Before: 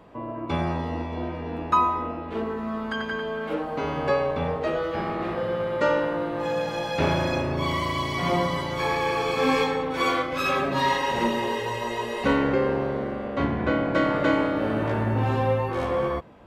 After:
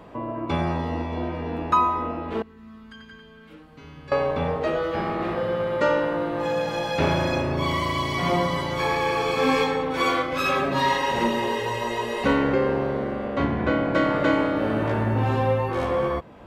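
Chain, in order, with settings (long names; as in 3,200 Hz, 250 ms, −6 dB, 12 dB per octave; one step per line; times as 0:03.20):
0:02.42–0:04.12: guitar amp tone stack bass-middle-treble 6-0-2
in parallel at −1.5 dB: downward compressor, threshold −37 dBFS, peak gain reduction 19.5 dB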